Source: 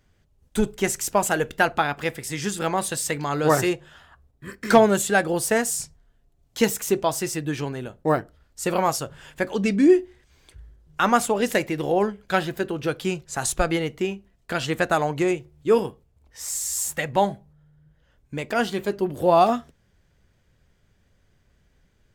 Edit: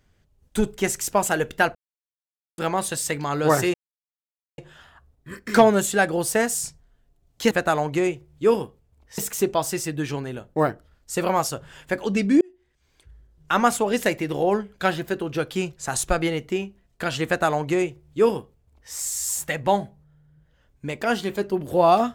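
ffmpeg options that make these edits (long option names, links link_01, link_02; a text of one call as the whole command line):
ffmpeg -i in.wav -filter_complex "[0:a]asplit=7[link_01][link_02][link_03][link_04][link_05][link_06][link_07];[link_01]atrim=end=1.75,asetpts=PTS-STARTPTS,afade=type=out:start_time=1.746:duration=0.004:curve=hsin[link_08];[link_02]atrim=start=1.75:end=2.58,asetpts=PTS-STARTPTS,volume=0[link_09];[link_03]atrim=start=2.58:end=3.74,asetpts=PTS-STARTPTS,afade=type=in:duration=0.004:curve=hsin,afade=type=out:start_time=1.156:duration=0.004:curve=hsin,apad=pad_dur=0.84[link_10];[link_04]atrim=start=3.74:end=6.672,asetpts=PTS-STARTPTS,afade=type=in:duration=0.004:curve=hsin[link_11];[link_05]atrim=start=14.748:end=16.422[link_12];[link_06]atrim=start=6.668:end=9.9,asetpts=PTS-STARTPTS,afade=type=out:start_time=3.228:duration=0.004:curve=hsin[link_13];[link_07]atrim=start=9.9,asetpts=PTS-STARTPTS,afade=type=in:duration=1.18[link_14];[link_08][link_09][link_10][link_11]concat=n=4:v=0:a=1[link_15];[link_15][link_12]acrossfade=duration=0.004:curve1=hsin:curve2=hsin[link_16];[link_13][link_14]concat=n=2:v=0:a=1[link_17];[link_16][link_17]acrossfade=duration=0.004:curve1=hsin:curve2=hsin" out.wav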